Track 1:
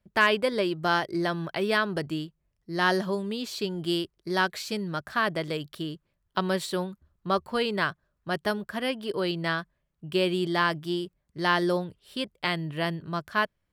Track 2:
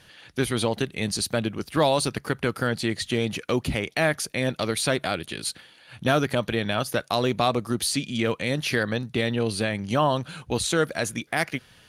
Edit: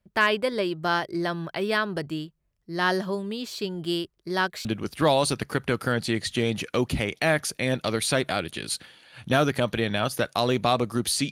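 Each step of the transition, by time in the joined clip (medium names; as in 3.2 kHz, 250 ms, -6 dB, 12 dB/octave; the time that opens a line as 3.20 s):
track 1
4.65 s: go over to track 2 from 1.40 s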